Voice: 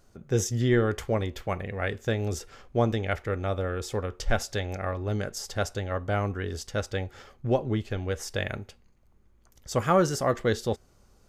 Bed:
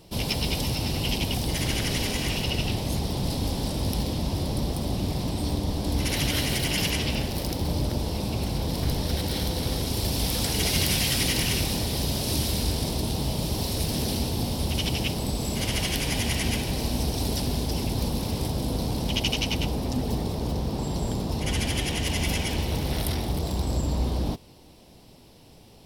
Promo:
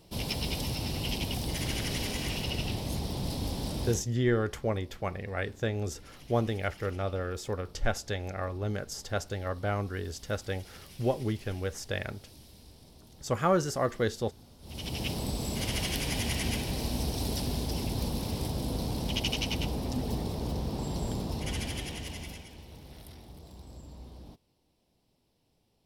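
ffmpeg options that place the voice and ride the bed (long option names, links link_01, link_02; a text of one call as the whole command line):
ffmpeg -i stem1.wav -i stem2.wav -filter_complex "[0:a]adelay=3550,volume=-3.5dB[link_01];[1:a]volume=16.5dB,afade=type=out:start_time=3.83:duration=0.23:silence=0.0841395,afade=type=in:start_time=14.61:duration=0.51:silence=0.0749894,afade=type=out:start_time=21.19:duration=1.29:silence=0.149624[link_02];[link_01][link_02]amix=inputs=2:normalize=0" out.wav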